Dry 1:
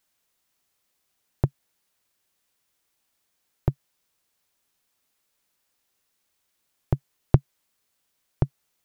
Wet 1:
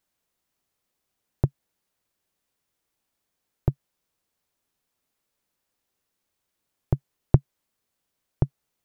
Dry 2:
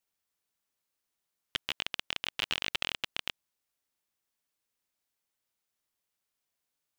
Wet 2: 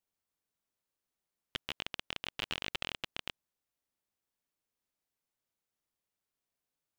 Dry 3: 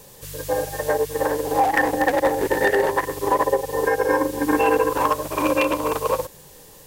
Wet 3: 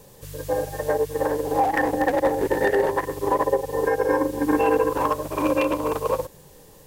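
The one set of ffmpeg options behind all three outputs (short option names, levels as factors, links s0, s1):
-af "tiltshelf=f=970:g=3.5,volume=0.708"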